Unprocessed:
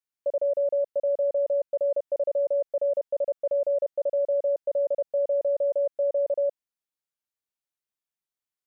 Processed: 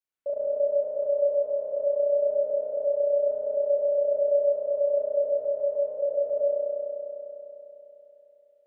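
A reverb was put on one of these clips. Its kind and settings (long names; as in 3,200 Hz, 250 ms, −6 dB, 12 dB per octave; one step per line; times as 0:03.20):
spring reverb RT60 3.5 s, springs 33 ms, chirp 65 ms, DRR −9.5 dB
level −5 dB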